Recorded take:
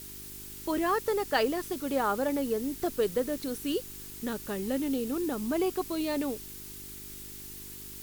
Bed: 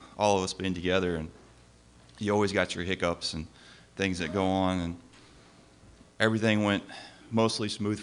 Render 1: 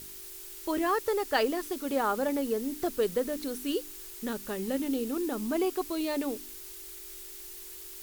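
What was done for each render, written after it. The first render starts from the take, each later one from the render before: de-hum 50 Hz, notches 6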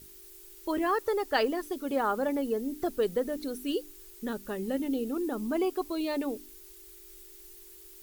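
noise reduction 9 dB, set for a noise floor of -45 dBFS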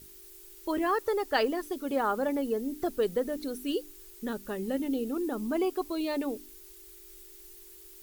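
no audible change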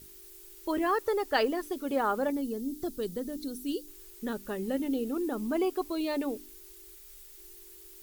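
2.30–3.88 s: high-order bell 1.1 kHz -9 dB 3 oct; 6.95–7.38 s: peaking EQ 360 Hz -13 dB 0.31 oct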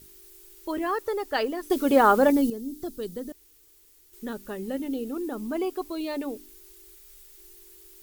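1.70–2.50 s: gain +10.5 dB; 3.32–4.13 s: room tone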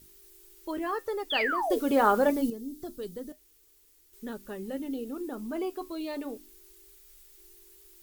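1.30–1.79 s: painted sound fall 410–3600 Hz -25 dBFS; flange 0.25 Hz, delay 3.7 ms, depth 6.3 ms, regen -73%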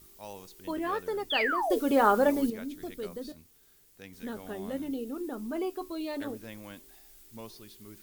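add bed -20 dB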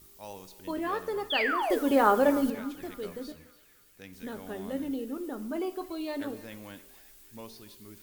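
band-passed feedback delay 286 ms, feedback 63%, band-pass 2.3 kHz, level -15 dB; two-slope reverb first 0.76 s, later 2.6 s, from -27 dB, DRR 12.5 dB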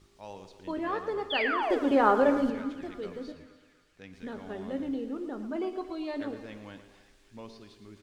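distance through air 110 m; feedback delay 115 ms, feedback 50%, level -12.5 dB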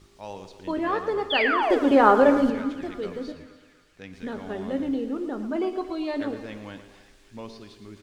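trim +6 dB

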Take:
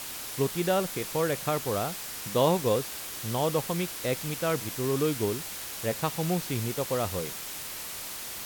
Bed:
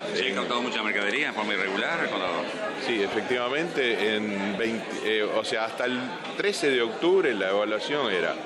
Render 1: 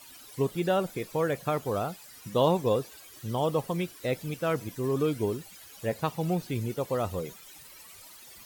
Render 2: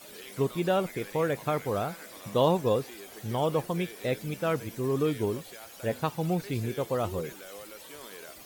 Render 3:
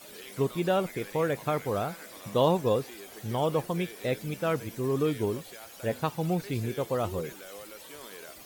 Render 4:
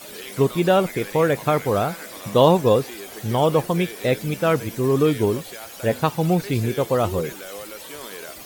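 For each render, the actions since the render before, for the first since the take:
noise reduction 16 dB, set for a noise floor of -38 dBFS
add bed -21 dB
no audible change
trim +9 dB

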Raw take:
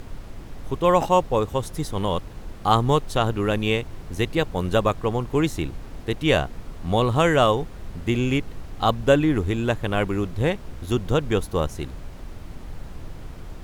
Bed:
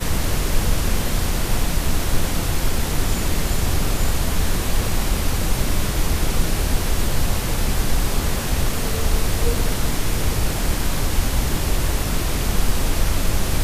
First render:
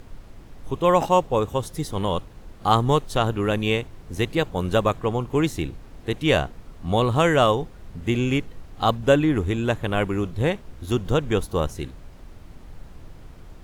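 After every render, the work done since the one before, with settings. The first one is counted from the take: noise print and reduce 6 dB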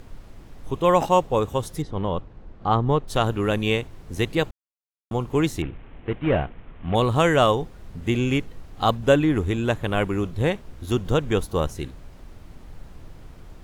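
1.82–3.08 s: tape spacing loss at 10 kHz 28 dB; 4.51–5.11 s: mute; 5.62–6.95 s: CVSD coder 16 kbps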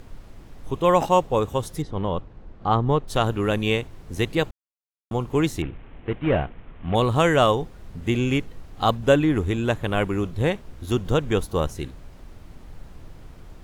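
no audible change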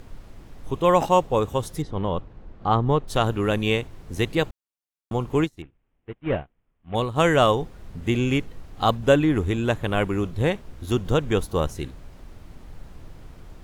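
5.44–7.21 s: upward expansion 2.5:1, over -36 dBFS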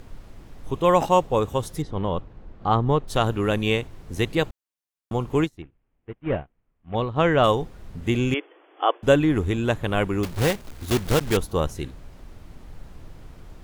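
5.57–7.44 s: distance through air 200 m; 8.34–9.03 s: brick-wall FIR band-pass 290–3500 Hz; 10.23–11.37 s: block-companded coder 3-bit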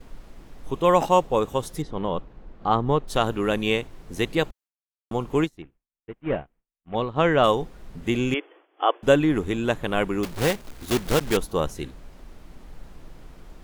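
expander -46 dBFS; peaking EQ 92 Hz -11.5 dB 0.71 oct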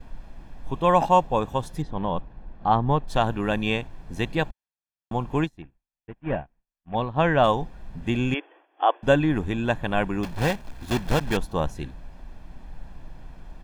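treble shelf 4.9 kHz -11 dB; comb 1.2 ms, depth 48%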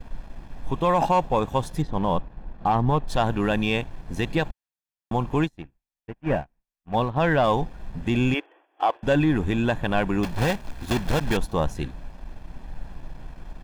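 waveshaping leveller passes 1; peak limiter -12.5 dBFS, peak gain reduction 6 dB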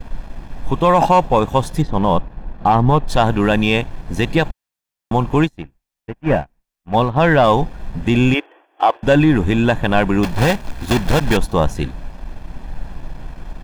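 trim +8 dB

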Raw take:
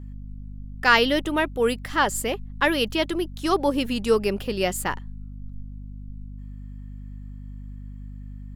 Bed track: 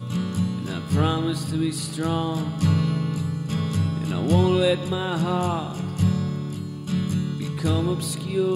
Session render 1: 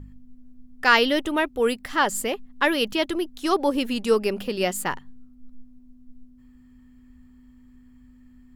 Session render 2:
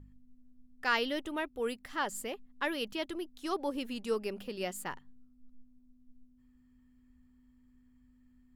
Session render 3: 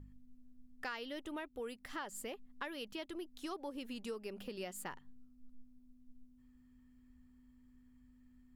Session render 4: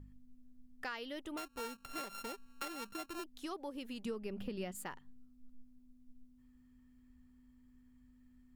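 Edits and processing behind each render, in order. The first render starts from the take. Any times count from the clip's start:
de-hum 50 Hz, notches 4
trim -12.5 dB
compression 5:1, threshold -41 dBFS, peak gain reduction 15.5 dB
1.37–3.24 s: sorted samples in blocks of 32 samples; 4.05–4.75 s: tone controls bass +10 dB, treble -6 dB

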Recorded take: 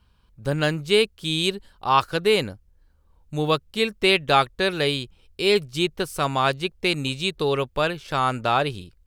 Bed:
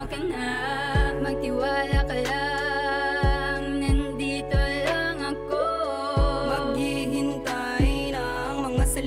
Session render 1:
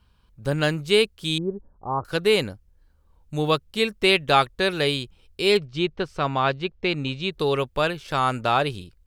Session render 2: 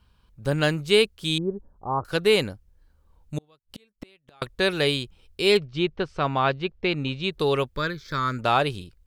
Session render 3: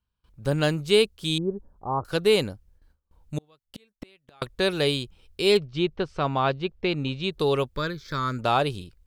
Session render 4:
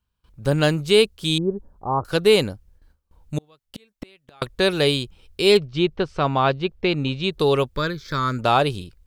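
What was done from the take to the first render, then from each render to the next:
1.38–2.05 s: Gaussian low-pass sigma 10 samples; 5.57–7.31 s: distance through air 170 m
3.38–4.42 s: inverted gate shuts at -23 dBFS, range -38 dB; 5.60–7.24 s: distance through air 68 m; 7.76–8.39 s: static phaser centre 2.8 kHz, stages 6
dynamic bell 1.9 kHz, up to -5 dB, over -38 dBFS, Q 1.2; gate with hold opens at -50 dBFS
trim +4.5 dB; peak limiter -3 dBFS, peak gain reduction 2 dB

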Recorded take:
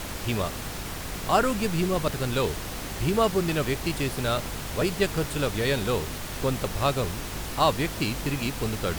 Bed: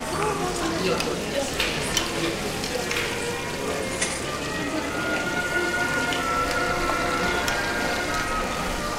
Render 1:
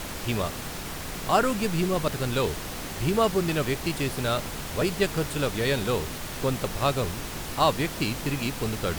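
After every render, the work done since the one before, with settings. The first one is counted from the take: de-hum 50 Hz, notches 2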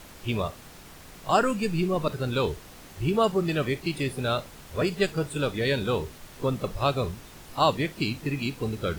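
noise print and reduce 12 dB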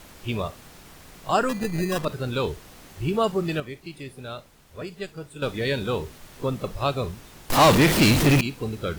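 1.49–2.05 s: sample-rate reducer 2.2 kHz; 3.60–5.42 s: gain -9.5 dB; 7.50–8.41 s: power-law waveshaper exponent 0.35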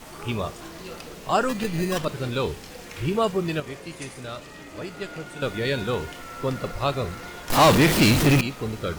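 add bed -15 dB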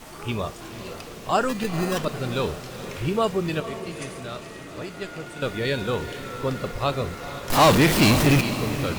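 echo that smears into a reverb 472 ms, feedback 52%, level -11.5 dB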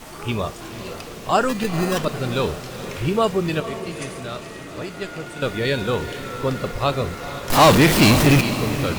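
trim +3.5 dB

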